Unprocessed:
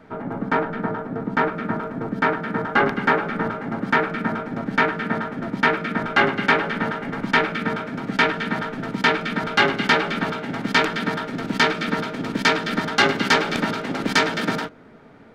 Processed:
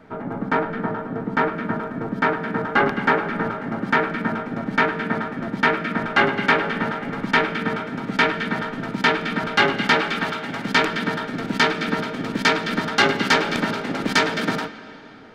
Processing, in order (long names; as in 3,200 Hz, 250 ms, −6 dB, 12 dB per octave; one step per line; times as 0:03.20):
0:10.01–0:10.66: tilt shelving filter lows −3.5 dB
on a send: Butterworth high-pass 200 Hz 72 dB per octave + convolution reverb RT60 3.2 s, pre-delay 42 ms, DRR 14 dB